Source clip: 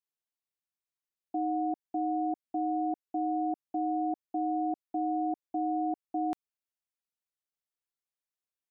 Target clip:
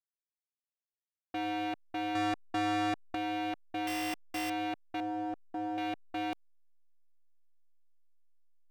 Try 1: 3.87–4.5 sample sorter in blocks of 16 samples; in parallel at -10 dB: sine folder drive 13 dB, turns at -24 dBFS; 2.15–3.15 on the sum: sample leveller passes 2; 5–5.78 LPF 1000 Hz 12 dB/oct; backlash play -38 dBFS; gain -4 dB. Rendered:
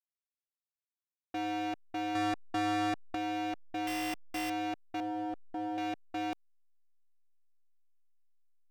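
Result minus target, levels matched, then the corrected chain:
backlash: distortion +6 dB
3.87–4.5 sample sorter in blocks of 16 samples; in parallel at -10 dB: sine folder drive 13 dB, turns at -24 dBFS; 2.15–3.15 on the sum: sample leveller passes 2; 5–5.78 LPF 1000 Hz 12 dB/oct; backlash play -44.5 dBFS; gain -4 dB

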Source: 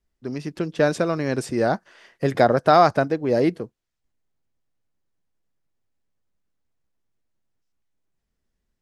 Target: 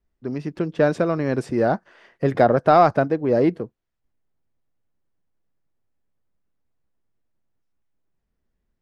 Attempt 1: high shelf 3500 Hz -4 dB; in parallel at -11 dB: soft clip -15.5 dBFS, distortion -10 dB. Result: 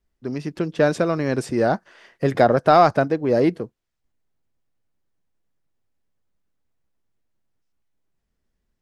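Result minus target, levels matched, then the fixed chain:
8000 Hz band +7.5 dB
high shelf 3500 Hz -14 dB; in parallel at -11 dB: soft clip -15.5 dBFS, distortion -10 dB

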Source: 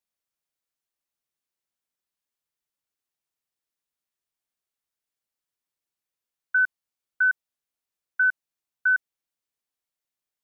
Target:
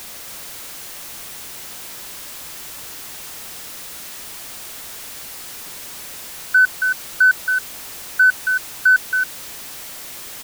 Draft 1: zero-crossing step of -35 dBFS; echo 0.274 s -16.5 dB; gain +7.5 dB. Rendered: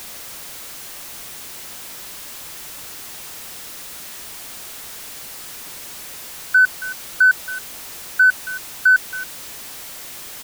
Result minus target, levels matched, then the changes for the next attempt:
echo-to-direct -10 dB
change: echo 0.274 s -6.5 dB

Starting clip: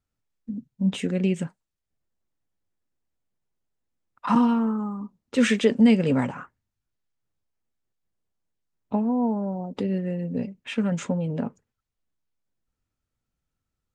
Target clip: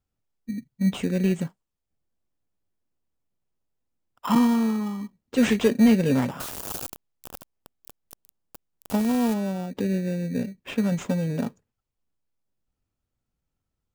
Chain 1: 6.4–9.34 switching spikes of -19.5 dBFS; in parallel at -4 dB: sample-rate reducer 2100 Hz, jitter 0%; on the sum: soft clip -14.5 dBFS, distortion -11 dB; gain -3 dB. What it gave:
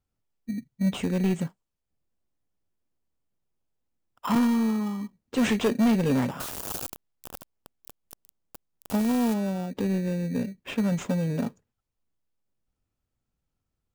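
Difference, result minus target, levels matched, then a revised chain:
soft clip: distortion +12 dB
6.4–9.34 switching spikes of -19.5 dBFS; in parallel at -4 dB: sample-rate reducer 2100 Hz, jitter 0%; on the sum: soft clip -5 dBFS, distortion -24 dB; gain -3 dB

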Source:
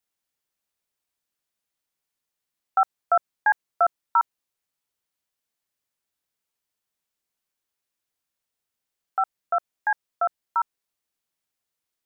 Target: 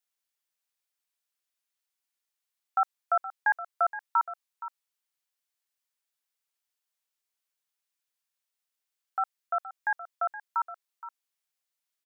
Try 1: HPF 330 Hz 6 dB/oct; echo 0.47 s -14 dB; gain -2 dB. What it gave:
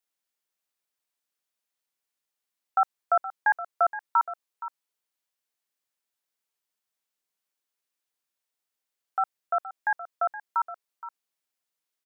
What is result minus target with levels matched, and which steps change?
250 Hz band +5.0 dB
change: HPF 1100 Hz 6 dB/oct

